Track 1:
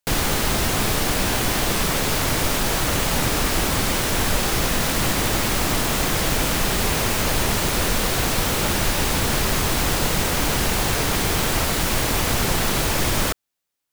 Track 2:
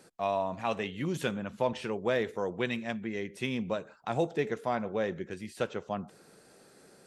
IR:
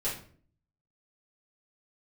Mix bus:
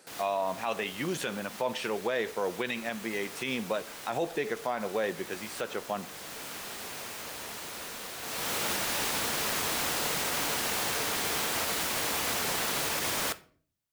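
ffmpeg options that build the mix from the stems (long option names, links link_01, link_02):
-filter_complex "[0:a]volume=-11.5dB,afade=type=in:start_time=8.2:duration=0.39:silence=0.316228,asplit=2[link_01][link_02];[link_02]volume=-17dB[link_03];[1:a]volume=2.5dB,asplit=2[link_04][link_05];[link_05]apad=whole_len=614304[link_06];[link_01][link_06]sidechaincompress=threshold=-31dB:ratio=8:attack=29:release=971[link_07];[2:a]atrim=start_sample=2205[link_08];[link_03][link_08]afir=irnorm=-1:irlink=0[link_09];[link_07][link_04][link_09]amix=inputs=3:normalize=0,highpass=frequency=540:poles=1,dynaudnorm=framelen=100:gausssize=3:maxgain=4dB,alimiter=limit=-20dB:level=0:latency=1:release=43"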